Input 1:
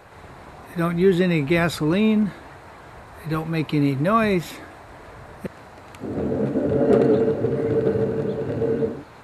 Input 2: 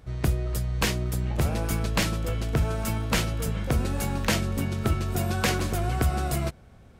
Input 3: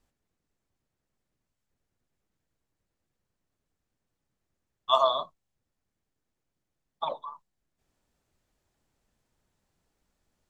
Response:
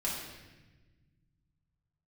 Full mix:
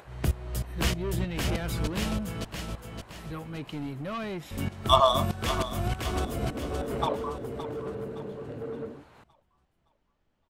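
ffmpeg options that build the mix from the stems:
-filter_complex "[0:a]acompressor=mode=upward:threshold=-34dB:ratio=2.5,asoftclip=type=tanh:threshold=-18.5dB,volume=-11.5dB[a];[1:a]acontrast=87,aeval=exprs='val(0)*pow(10,-18*if(lt(mod(-3.2*n/s,1),2*abs(-3.2)/1000),1-mod(-3.2*n/s,1)/(2*abs(-3.2)/1000),(mod(-3.2*n/s,1)-2*abs(-3.2)/1000)/(1-2*abs(-3.2)/1000))/20)':c=same,volume=-7dB,asplit=3[b][c][d];[b]atrim=end=2.45,asetpts=PTS-STARTPTS,afade=t=out:st=2.446:d=0.004:c=hsin[e];[c]atrim=start=2.45:end=4.51,asetpts=PTS-STARTPTS,volume=0[f];[d]atrim=start=4.51,asetpts=PTS-STARTPTS,afade=t=in:d=0.004:c=hsin[g];[e][f][g]concat=n=3:v=0:a=1,asplit=2[h][i];[i]volume=-4dB[j];[2:a]adynamicsmooth=sensitivity=5.5:basefreq=3.4k,volume=2.5dB,asplit=2[k][l];[l]volume=-12.5dB[m];[j][m]amix=inputs=2:normalize=0,aecho=0:1:567|1134|1701|2268|2835|3402:1|0.4|0.16|0.064|0.0256|0.0102[n];[a][h][k][n]amix=inputs=4:normalize=0,equalizer=f=3k:w=5.7:g=5"

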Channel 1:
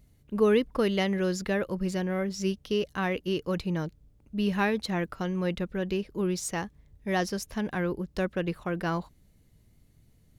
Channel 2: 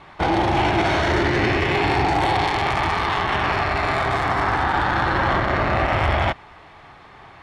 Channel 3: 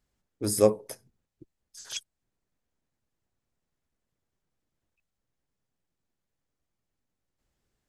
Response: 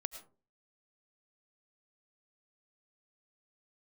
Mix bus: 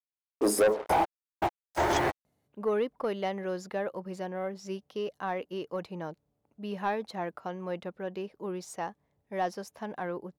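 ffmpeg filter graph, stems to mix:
-filter_complex "[0:a]highpass=140,adelay=2250,volume=-11.5dB[a];[1:a]adelay=700,volume=-12dB[b];[2:a]highpass=f=220:w=0.5412,highpass=f=220:w=1.3066,equalizer=f=350:w=0.41:g=6,volume=-1.5dB,asplit=2[c][d];[d]apad=whole_len=358380[e];[b][e]sidechaingate=range=-33dB:threshold=-49dB:ratio=16:detection=peak[f];[f][c]amix=inputs=2:normalize=0,acrusher=bits=6:mix=0:aa=0.5,alimiter=limit=-13dB:level=0:latency=1:release=194,volume=0dB[g];[a][g]amix=inputs=2:normalize=0,equalizer=f=770:t=o:w=1.7:g=13.5,asoftclip=type=tanh:threshold=-18dB"

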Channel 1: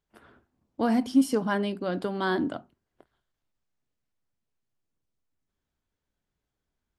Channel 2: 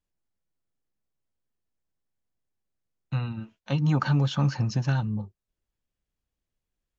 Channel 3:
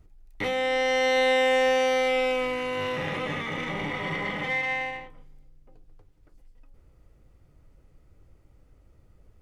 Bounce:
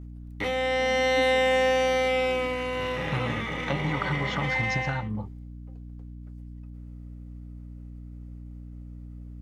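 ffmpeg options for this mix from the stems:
-filter_complex "[0:a]equalizer=f=1.5k:w=0.97:g=-9.5,volume=-17.5dB[a];[1:a]equalizer=f=1.1k:w=0.46:g=10.5,acompressor=threshold=-27dB:ratio=6,volume=0dB[b];[2:a]highpass=44,agate=range=-33dB:threshold=-58dB:ratio=3:detection=peak,aeval=exprs='val(0)+0.0112*(sin(2*PI*60*n/s)+sin(2*PI*2*60*n/s)/2+sin(2*PI*3*60*n/s)/3+sin(2*PI*4*60*n/s)/4+sin(2*PI*5*60*n/s)/5)':c=same,volume=-0.5dB[c];[a][b][c]amix=inputs=3:normalize=0"

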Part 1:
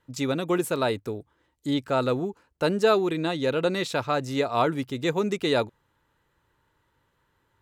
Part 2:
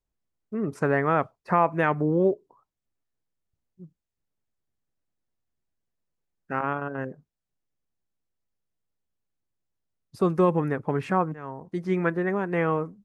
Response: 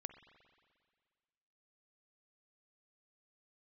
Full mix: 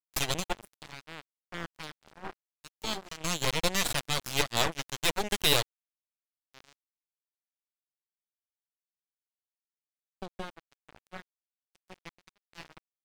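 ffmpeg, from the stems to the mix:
-filter_complex "[0:a]equalizer=f=160:t=o:w=2:g=-2.5,volume=-1dB[a];[1:a]volume=-9.5dB,asplit=3[b][c][d];[c]volume=-8.5dB[e];[d]apad=whole_len=335712[f];[a][f]sidechaincompress=threshold=-50dB:ratio=4:attack=5.6:release=671[g];[e]aecho=0:1:702|1404|2106|2808:1|0.27|0.0729|0.0197[h];[g][b][h]amix=inputs=3:normalize=0,highshelf=f=2k:t=q:w=1.5:g=9.5,aeval=exprs='0.398*(cos(1*acos(clip(val(0)/0.398,-1,1)))-cos(1*PI/2))+0.0891*(cos(3*acos(clip(val(0)/0.398,-1,1)))-cos(3*PI/2))+0.0708*(cos(8*acos(clip(val(0)/0.398,-1,1)))-cos(8*PI/2))':c=same,aeval=exprs='sgn(val(0))*max(abs(val(0))-0.0237,0)':c=same"

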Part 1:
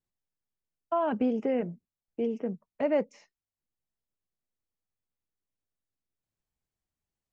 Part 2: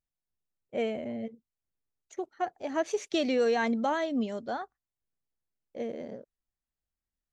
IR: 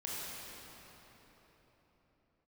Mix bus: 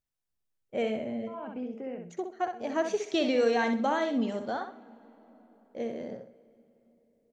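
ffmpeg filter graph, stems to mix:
-filter_complex "[0:a]adelay=350,volume=-11dB,asplit=2[a][b];[b]volume=-5dB[c];[1:a]acrossover=split=6600[d][e];[e]acompressor=threshold=-59dB:ratio=4:attack=1:release=60[f];[d][f]amix=inputs=2:normalize=0,volume=0dB,asplit=4[g][h][i][j];[h]volume=-20.5dB[k];[i]volume=-7dB[l];[j]apad=whole_len=338633[m];[a][m]sidechaincompress=threshold=-43dB:ratio=8:attack=16:release=306[n];[2:a]atrim=start_sample=2205[o];[k][o]afir=irnorm=-1:irlink=0[p];[c][l]amix=inputs=2:normalize=0,aecho=0:1:64|128|192|256:1|0.25|0.0625|0.0156[q];[n][g][p][q]amix=inputs=4:normalize=0"

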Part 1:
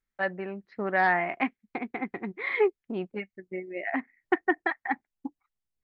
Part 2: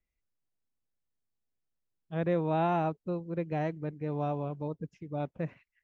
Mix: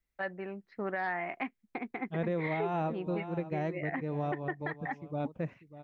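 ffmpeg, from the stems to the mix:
-filter_complex "[0:a]volume=-4.5dB[a];[1:a]volume=-0.5dB,asplit=2[b][c];[c]volume=-15dB,aecho=0:1:593:1[d];[a][b][d]amix=inputs=3:normalize=0,alimiter=limit=-24dB:level=0:latency=1:release=210"

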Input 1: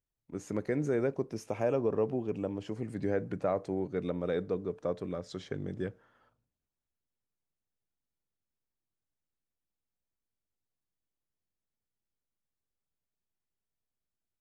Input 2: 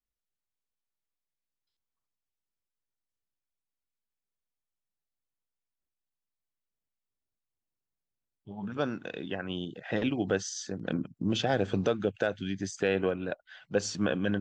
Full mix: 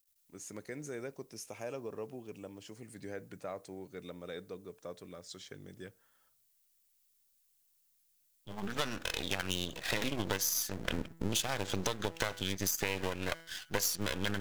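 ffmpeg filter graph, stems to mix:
-filter_complex "[0:a]volume=-13.5dB[a];[1:a]bandreject=f=164.5:t=h:w=4,bandreject=f=329:t=h:w=4,bandreject=f=493.5:t=h:w=4,bandreject=f=658:t=h:w=4,bandreject=f=822.5:t=h:w=4,bandreject=f=987:t=h:w=4,bandreject=f=1.1515k:t=h:w=4,bandreject=f=1.316k:t=h:w=4,bandreject=f=1.4805k:t=h:w=4,bandreject=f=1.645k:t=h:w=4,bandreject=f=1.8095k:t=h:w=4,bandreject=f=1.974k:t=h:w=4,bandreject=f=2.1385k:t=h:w=4,bandreject=f=2.303k:t=h:w=4,aeval=exprs='max(val(0),0)':c=same,volume=1.5dB[b];[a][b]amix=inputs=2:normalize=0,crystalizer=i=8.5:c=0,acompressor=threshold=-28dB:ratio=10"

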